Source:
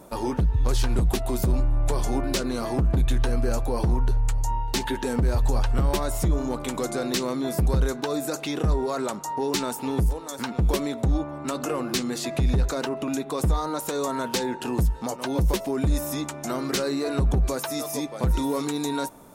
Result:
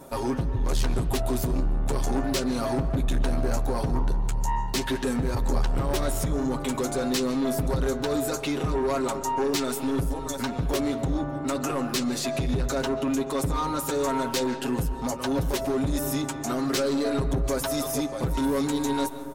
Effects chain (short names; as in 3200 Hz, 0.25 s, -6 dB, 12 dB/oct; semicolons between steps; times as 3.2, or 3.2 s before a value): comb 7.4 ms, depth 84%; soft clip -20.5 dBFS, distortion -11 dB; reverb RT60 2.2 s, pre-delay 0.105 s, DRR 12 dB